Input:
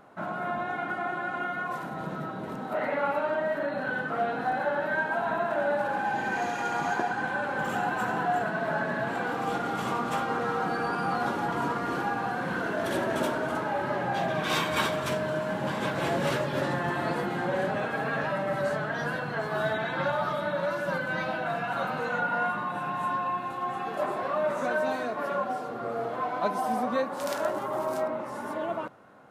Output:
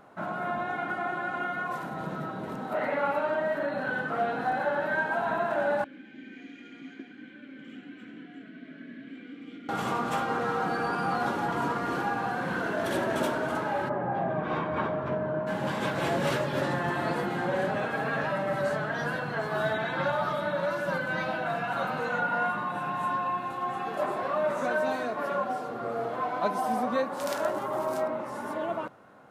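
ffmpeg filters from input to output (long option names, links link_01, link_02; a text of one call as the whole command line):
ffmpeg -i in.wav -filter_complex "[0:a]asettb=1/sr,asplit=3[link_01][link_02][link_03];[link_01]atrim=end=5.844[link_04];[link_02]atrim=start=5.84:end=9.69,asetpts=PTS-STARTPTS,afade=type=in:duration=0.004:curve=qsin,afade=type=out:start_time=3.846:duration=0.004:curve=qsin,asplit=3[link_05][link_06][link_07];[link_05]bandpass=frequency=270:width_type=q:width=8,volume=0dB[link_08];[link_06]bandpass=frequency=2290:width_type=q:width=8,volume=-6dB[link_09];[link_07]bandpass=frequency=3010:width_type=q:width=8,volume=-9dB[link_10];[link_08][link_09][link_10]amix=inputs=3:normalize=0[link_11];[link_03]atrim=start=9.686[link_12];[link_04][link_11]acrossfade=duration=0.004:curve1=hsin:curve2=qsin[link_13];[link_13][link_12]acrossfade=duration=0.004:curve1=qsin:curve2=hsin,asplit=3[link_14][link_15][link_16];[link_14]afade=type=out:start_time=13.88:duration=0.02[link_17];[link_15]lowpass=1200,afade=type=in:start_time=13.88:duration=0.02,afade=type=out:start_time=15.46:duration=0.02[link_18];[link_16]afade=type=in:start_time=15.46:duration=0.02[link_19];[link_17][link_18][link_19]amix=inputs=3:normalize=0" out.wav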